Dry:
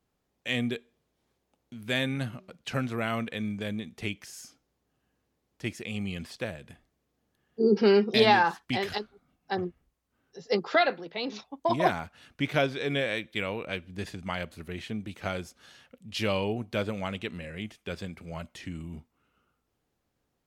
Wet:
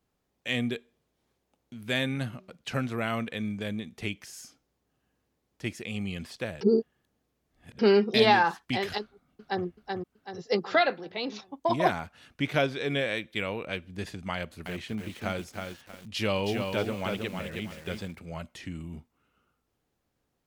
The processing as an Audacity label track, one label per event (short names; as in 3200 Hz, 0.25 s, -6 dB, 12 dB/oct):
6.610000	7.790000	reverse
9.010000	9.650000	echo throw 0.38 s, feedback 45%, level -3.5 dB
14.340000	18.190000	lo-fi delay 0.318 s, feedback 35%, word length 8-bit, level -4.5 dB